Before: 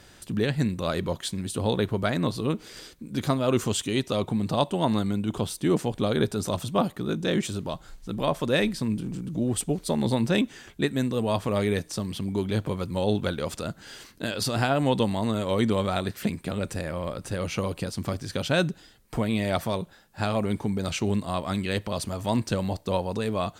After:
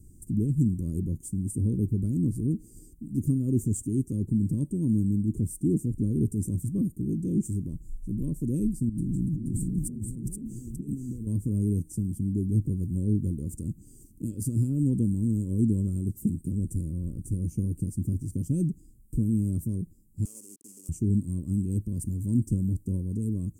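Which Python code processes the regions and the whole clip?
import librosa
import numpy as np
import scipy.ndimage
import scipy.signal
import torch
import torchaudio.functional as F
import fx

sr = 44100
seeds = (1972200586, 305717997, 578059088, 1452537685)

y = fx.chain(x, sr, fx.over_compress(threshold_db=-35.0, ratio=-1.0),
    fx.echo_single(ms=477, db=-3.5), at=(8.89, 11.27))
y = fx.chain(y, sr, fx.delta_hold(step_db=-27.5),
    fx.bandpass_edges(low_hz=630.0, high_hz=6000.0),
    fx.tilt_eq(slope=4.0), at=(20.25, 20.89))
y = scipy.signal.sosfilt(scipy.signal.ellip(3, 1.0, 40, [310.0, 8100.0], 'bandstop', fs=sr, output='sos'), y)
y = fx.low_shelf(y, sr, hz=130.0, db=11.0)
y = y * 10.0 ** (-1.5 / 20.0)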